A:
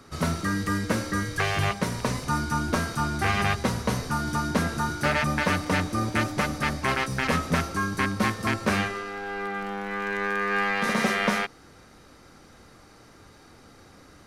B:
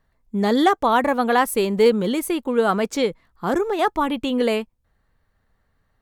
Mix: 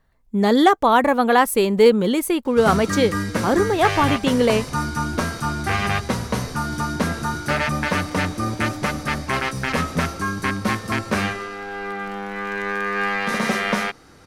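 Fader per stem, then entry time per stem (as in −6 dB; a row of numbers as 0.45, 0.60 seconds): +2.5, +2.5 decibels; 2.45, 0.00 seconds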